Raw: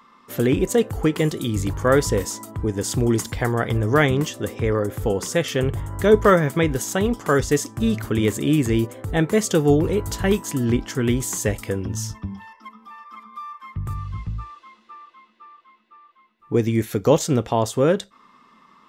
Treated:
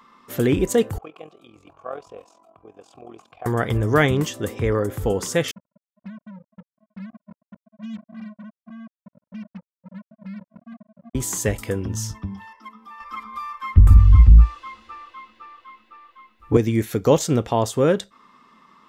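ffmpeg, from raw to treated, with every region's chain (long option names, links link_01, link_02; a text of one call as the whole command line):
ffmpeg -i in.wav -filter_complex "[0:a]asettb=1/sr,asplit=3[link_01][link_02][link_03];[link_01]atrim=end=0.984[link_04];[link_02]atrim=start=0.98:end=3.46,asetpts=PTS-STARTPTS,afade=type=in:duration=0.004:curve=qsin,afade=type=out:start_time=2.476:duration=0.004:curve=qsin,tremolo=f=43:d=0.75,asplit=3[link_05][link_06][link_07];[link_05]bandpass=frequency=730:width_type=q:width=8,volume=0dB[link_08];[link_06]bandpass=frequency=1090:width_type=q:width=8,volume=-6dB[link_09];[link_07]bandpass=frequency=2440:width_type=q:width=8,volume=-9dB[link_10];[link_08][link_09][link_10]amix=inputs=3:normalize=0[link_11];[link_03]atrim=start=3.456[link_12];[link_04][link_11]acrossfade=duration=0.004:curve1=hsin:curve2=qsin[link_13];[link_13][link_12]acrossfade=duration=0.004:curve1=qsin:curve2=hsin,asettb=1/sr,asplit=3[link_14][link_15][link_16];[link_14]atrim=end=5.514[link_17];[link_15]atrim=start=5.51:end=11.15,asetpts=PTS-STARTPTS,afade=type=in:duration=0.004:curve=qsin,afade=type=out:start_time=5.636:duration=0.004:curve=qsin,acompressor=threshold=-26dB:ratio=16:attack=3.2:release=140:knee=1:detection=peak,asuperpass=centerf=200:order=12:qfactor=3.8,acrusher=bits=6:mix=0:aa=0.5[link_18];[link_16]atrim=start=11.146[link_19];[link_17][link_18]acrossfade=duration=0.004:curve1=hsin:curve2=qsin[link_20];[link_20][link_19]acrossfade=duration=0.004:curve1=qsin:curve2=hsin,asettb=1/sr,asplit=3[link_21][link_22][link_23];[link_21]atrim=end=13.004[link_24];[link_22]atrim=start=13:end=16.57,asetpts=PTS-STARTPTS,afade=type=in:duration=0.004:curve=qsin,afade=type=out:start_time=3.566:duration=0.004:curve=qsin,lowshelf=frequency=110:width_type=q:width=3:gain=13,aecho=1:1:3.8:0.4,atrim=end_sample=157437,acontrast=77[link_25];[link_23]atrim=start=16.566[link_26];[link_24][link_25]acrossfade=duration=0.004:curve1=hsin:curve2=qsin[link_27];[link_27][link_26]acrossfade=duration=0.004:curve1=qsin:curve2=hsin" out.wav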